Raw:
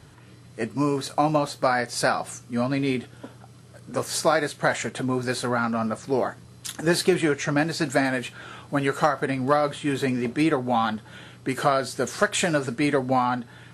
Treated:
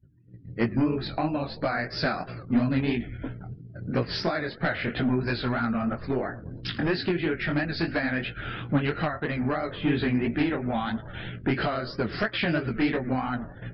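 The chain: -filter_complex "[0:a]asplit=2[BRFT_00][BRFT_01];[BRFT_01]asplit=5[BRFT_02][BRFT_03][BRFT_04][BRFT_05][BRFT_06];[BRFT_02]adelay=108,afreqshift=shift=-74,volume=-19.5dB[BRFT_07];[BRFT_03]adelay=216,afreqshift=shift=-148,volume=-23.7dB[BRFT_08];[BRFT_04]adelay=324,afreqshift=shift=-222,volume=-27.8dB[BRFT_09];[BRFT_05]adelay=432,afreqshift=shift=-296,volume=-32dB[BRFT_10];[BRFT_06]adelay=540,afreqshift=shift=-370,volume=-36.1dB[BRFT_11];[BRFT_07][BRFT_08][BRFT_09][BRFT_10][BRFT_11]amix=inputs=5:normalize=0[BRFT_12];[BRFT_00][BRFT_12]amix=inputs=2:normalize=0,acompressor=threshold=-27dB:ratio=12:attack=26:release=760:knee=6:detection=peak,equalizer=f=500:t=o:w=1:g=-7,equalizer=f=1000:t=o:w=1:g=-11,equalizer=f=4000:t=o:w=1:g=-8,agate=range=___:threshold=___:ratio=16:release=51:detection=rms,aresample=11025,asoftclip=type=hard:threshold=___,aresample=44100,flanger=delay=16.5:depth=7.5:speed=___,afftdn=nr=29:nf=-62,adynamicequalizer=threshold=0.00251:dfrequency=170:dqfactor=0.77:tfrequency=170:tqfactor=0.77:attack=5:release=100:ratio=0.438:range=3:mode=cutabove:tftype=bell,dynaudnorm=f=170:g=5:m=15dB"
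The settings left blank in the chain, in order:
-8dB, -48dB, -29dB, 3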